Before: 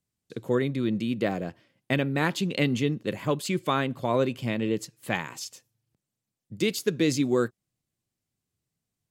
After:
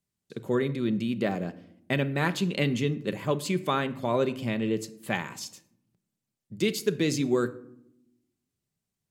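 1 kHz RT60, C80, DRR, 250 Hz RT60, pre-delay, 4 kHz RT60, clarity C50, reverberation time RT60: 0.70 s, 20.0 dB, 10.0 dB, 1.3 s, 5 ms, 0.40 s, 17.0 dB, 0.80 s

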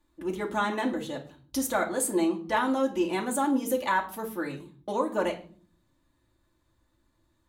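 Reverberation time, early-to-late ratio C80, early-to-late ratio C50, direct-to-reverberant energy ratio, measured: 0.45 s, 17.5 dB, 12.5 dB, -1.5 dB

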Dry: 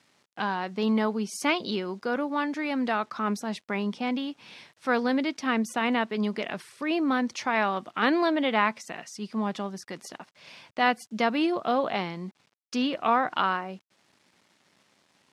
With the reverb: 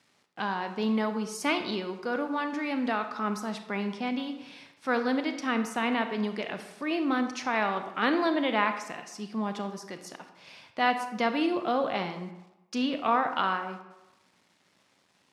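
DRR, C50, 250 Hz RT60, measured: 7.5 dB, 9.0 dB, 0.85 s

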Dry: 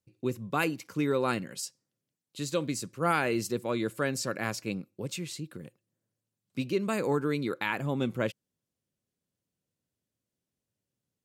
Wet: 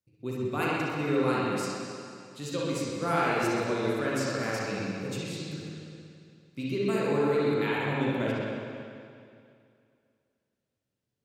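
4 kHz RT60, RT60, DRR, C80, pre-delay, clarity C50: 2.3 s, 2.4 s, -6.5 dB, -1.5 dB, 37 ms, -5.5 dB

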